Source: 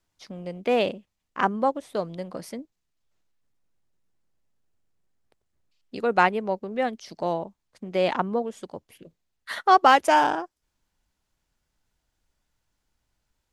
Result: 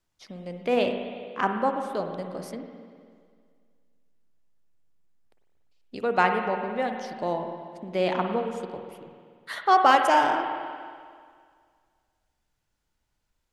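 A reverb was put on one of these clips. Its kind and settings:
spring reverb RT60 2 s, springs 49/57 ms, chirp 70 ms, DRR 4.5 dB
level −2.5 dB

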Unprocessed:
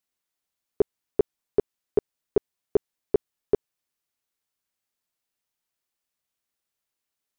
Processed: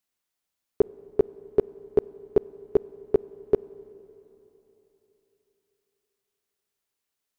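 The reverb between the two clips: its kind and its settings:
four-comb reverb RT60 3.5 s, combs from 31 ms, DRR 19 dB
level +1 dB

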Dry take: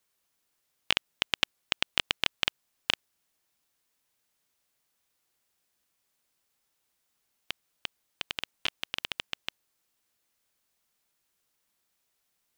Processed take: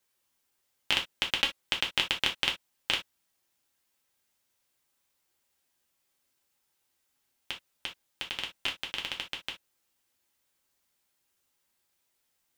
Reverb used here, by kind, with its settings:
reverb whose tail is shaped and stops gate 90 ms falling, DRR 0 dB
level −2.5 dB

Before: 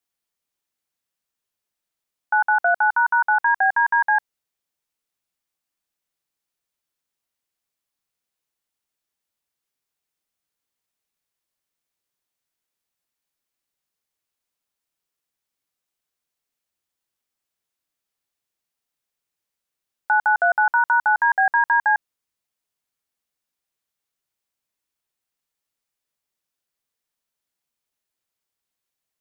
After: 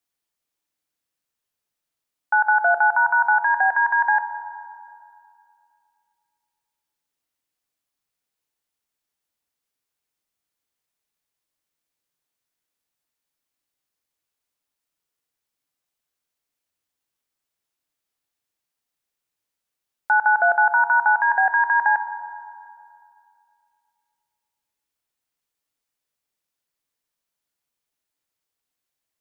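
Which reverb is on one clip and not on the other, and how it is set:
feedback delay network reverb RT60 2.5 s, low-frequency decay 0.9×, high-frequency decay 0.4×, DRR 9.5 dB

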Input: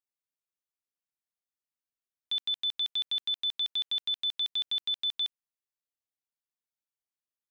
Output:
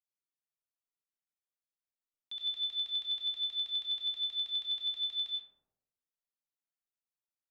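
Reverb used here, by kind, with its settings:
comb and all-pass reverb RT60 0.98 s, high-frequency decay 0.3×, pre-delay 55 ms, DRR −2 dB
level −11 dB

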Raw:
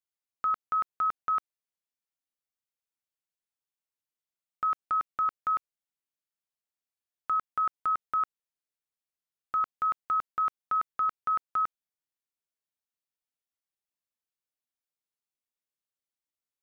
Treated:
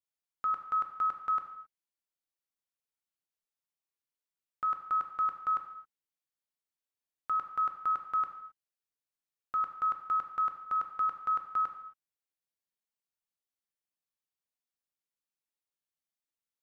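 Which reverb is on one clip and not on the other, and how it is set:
reverb whose tail is shaped and stops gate 290 ms falling, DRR 5 dB
level −4.5 dB

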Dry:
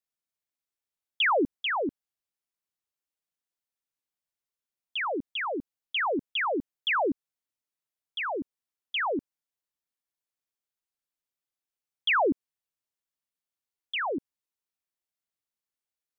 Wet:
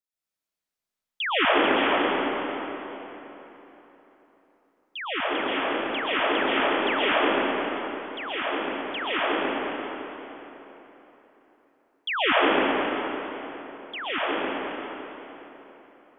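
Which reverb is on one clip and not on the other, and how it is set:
comb and all-pass reverb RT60 3.7 s, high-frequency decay 0.7×, pre-delay 90 ms, DRR −10 dB
level −4.5 dB

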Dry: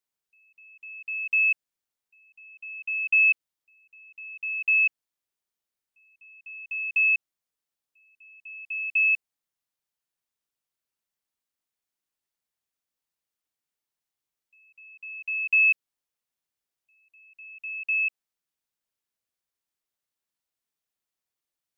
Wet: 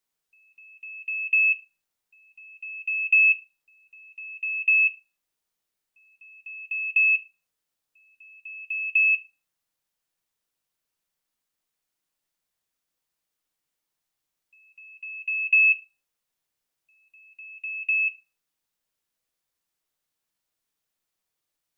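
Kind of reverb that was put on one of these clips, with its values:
rectangular room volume 150 cubic metres, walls furnished, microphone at 0.56 metres
level +4.5 dB

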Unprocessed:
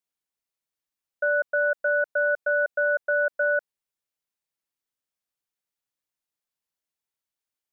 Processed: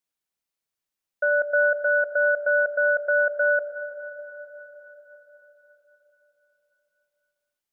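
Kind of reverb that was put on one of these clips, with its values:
comb and all-pass reverb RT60 4.9 s, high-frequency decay 0.75×, pre-delay 50 ms, DRR 7.5 dB
level +1.5 dB

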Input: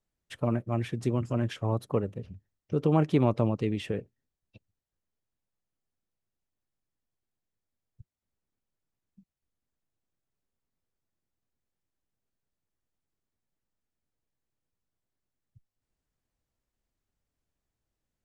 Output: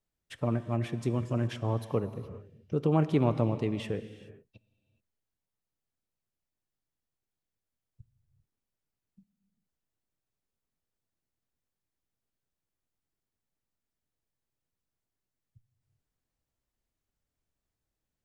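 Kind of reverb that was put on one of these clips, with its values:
reverb whose tail is shaped and stops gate 450 ms flat, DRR 11.5 dB
level −2 dB

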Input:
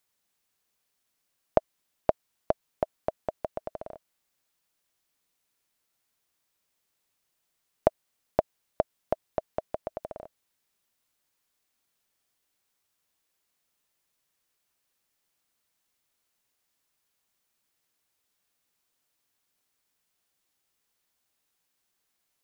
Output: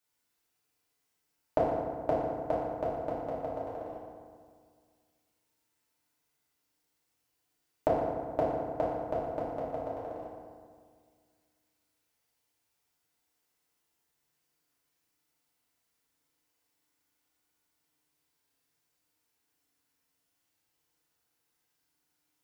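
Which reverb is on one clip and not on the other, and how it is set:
feedback delay network reverb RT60 1.9 s, low-frequency decay 1.2×, high-frequency decay 0.55×, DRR −8.5 dB
level −9 dB

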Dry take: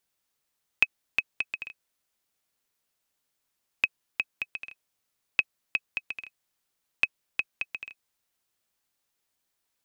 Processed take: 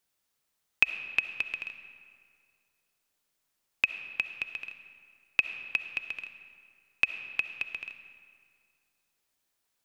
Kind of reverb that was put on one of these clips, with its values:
comb and all-pass reverb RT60 2.2 s, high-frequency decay 0.65×, pre-delay 25 ms, DRR 9 dB

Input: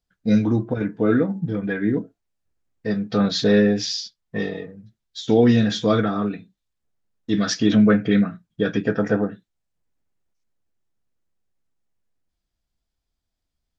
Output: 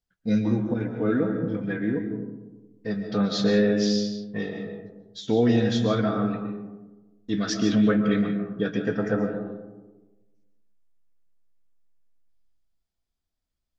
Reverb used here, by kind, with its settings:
comb and all-pass reverb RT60 1.2 s, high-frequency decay 0.3×, pre-delay 95 ms, DRR 5.5 dB
level −5.5 dB

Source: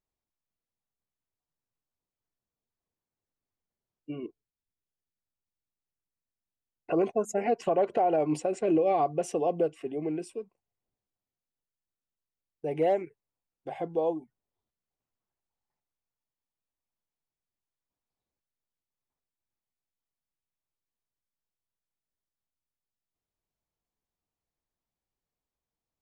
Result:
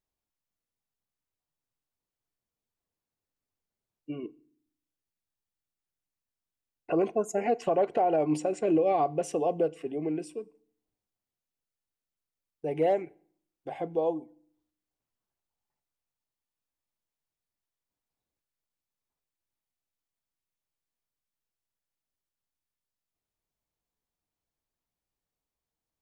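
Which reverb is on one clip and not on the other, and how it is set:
feedback delay network reverb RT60 0.57 s, low-frequency decay 1.4×, high-frequency decay 0.95×, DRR 20 dB

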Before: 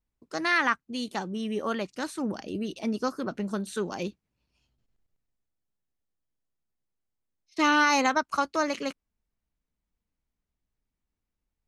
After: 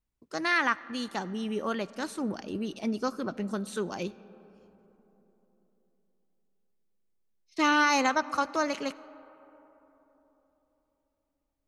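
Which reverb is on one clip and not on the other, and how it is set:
comb and all-pass reverb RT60 3.9 s, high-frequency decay 0.35×, pre-delay 30 ms, DRR 18.5 dB
level −1.5 dB

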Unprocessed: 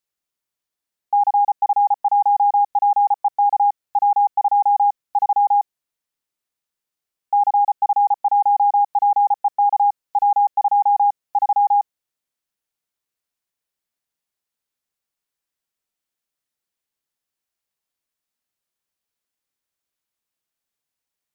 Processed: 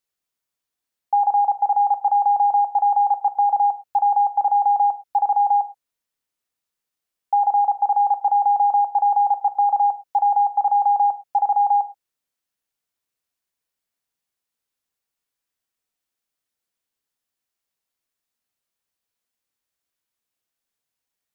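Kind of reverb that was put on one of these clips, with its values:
reverb whose tail is shaped and stops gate 140 ms falling, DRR 9 dB

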